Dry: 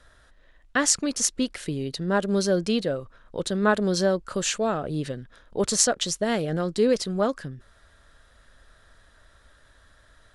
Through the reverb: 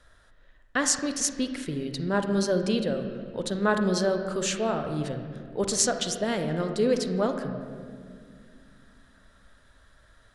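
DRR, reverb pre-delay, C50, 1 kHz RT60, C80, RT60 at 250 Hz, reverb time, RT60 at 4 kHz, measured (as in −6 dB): 6.0 dB, 39 ms, 7.0 dB, 1.8 s, 8.5 dB, 3.5 s, 2.1 s, 1.5 s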